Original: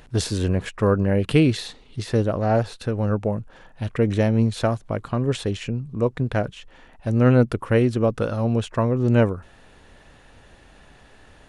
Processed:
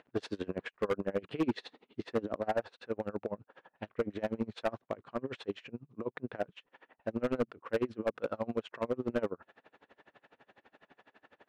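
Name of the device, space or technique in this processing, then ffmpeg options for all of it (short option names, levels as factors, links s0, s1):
helicopter radio: -filter_complex "[0:a]asettb=1/sr,asplit=3[s0][s1][s2];[s0]atrim=end=1.444[s3];[s1]atrim=start=1.44:end=2.41,asetpts=PTS-STARTPTS,afade=t=in:d=0.004:c=qsin,afade=t=out:st=0.966:d=0.004:c=qsin,equalizer=f=250:t=o:w=1.1:g=6[s4];[s2]atrim=start=2.406[s5];[s3][s4]acrossfade=d=0.004:c1=hsin:c2=qsin[s6];[s6][s5]acrossfade=d=0.004:c1=qsin:c2=hsin,highpass=300,lowpass=2500,aeval=exprs='val(0)*pow(10,-29*(0.5-0.5*cos(2*PI*12*n/s))/20)':c=same,asoftclip=type=hard:threshold=0.0794,volume=0.794"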